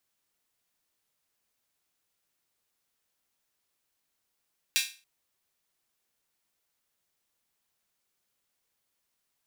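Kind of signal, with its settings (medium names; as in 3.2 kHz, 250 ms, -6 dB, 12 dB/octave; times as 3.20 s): open hi-hat length 0.28 s, high-pass 2.6 kHz, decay 0.34 s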